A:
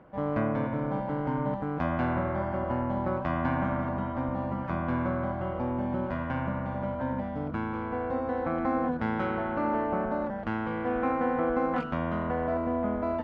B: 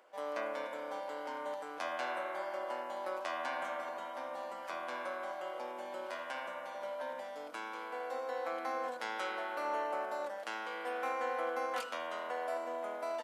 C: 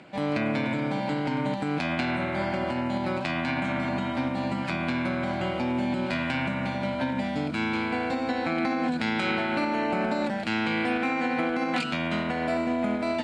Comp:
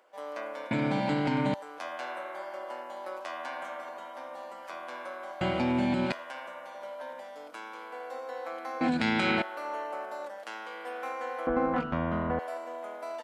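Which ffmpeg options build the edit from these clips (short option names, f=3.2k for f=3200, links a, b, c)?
-filter_complex "[2:a]asplit=3[a][b][c];[1:a]asplit=5[d][e][f][g][h];[d]atrim=end=0.712[i];[a]atrim=start=0.708:end=1.542[j];[e]atrim=start=1.538:end=5.412[k];[b]atrim=start=5.408:end=6.122[l];[f]atrim=start=6.118:end=8.812[m];[c]atrim=start=8.808:end=9.422[n];[g]atrim=start=9.418:end=11.472[o];[0:a]atrim=start=11.468:end=12.392[p];[h]atrim=start=12.388[q];[i][j]acrossfade=d=0.004:c1=hsin:c2=hsin[r];[r][k]acrossfade=d=0.004:c1=hsin:c2=hsin[s];[s][l]acrossfade=d=0.004:c1=hsin:c2=hsin[t];[t][m]acrossfade=d=0.004:c1=hsin:c2=hsin[u];[u][n]acrossfade=d=0.004:c1=hsin:c2=hsin[v];[v][o]acrossfade=d=0.004:c1=hsin:c2=hsin[w];[w][p]acrossfade=d=0.004:c1=hsin:c2=hsin[x];[x][q]acrossfade=d=0.004:c1=hsin:c2=hsin"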